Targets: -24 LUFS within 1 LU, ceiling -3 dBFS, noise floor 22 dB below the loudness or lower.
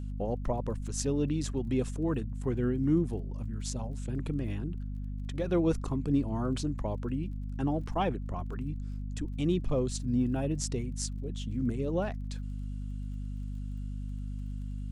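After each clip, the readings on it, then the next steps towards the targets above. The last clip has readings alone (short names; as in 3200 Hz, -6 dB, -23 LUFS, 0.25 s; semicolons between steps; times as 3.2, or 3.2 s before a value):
ticks 27/s; hum 50 Hz; harmonics up to 250 Hz; hum level -34 dBFS; loudness -33.0 LUFS; peak -14.0 dBFS; loudness target -24.0 LUFS
-> de-click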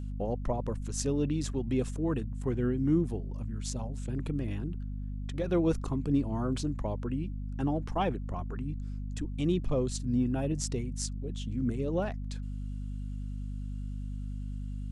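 ticks 0.067/s; hum 50 Hz; harmonics up to 250 Hz; hum level -34 dBFS
-> de-hum 50 Hz, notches 5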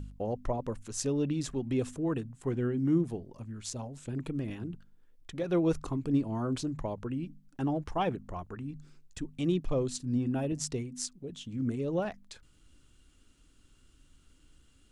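hum none; loudness -33.5 LUFS; peak -15.5 dBFS; loudness target -24.0 LUFS
-> gain +9.5 dB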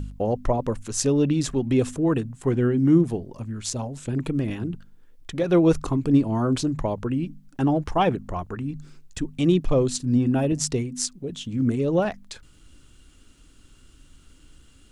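loudness -24.0 LUFS; peak -6.0 dBFS; noise floor -53 dBFS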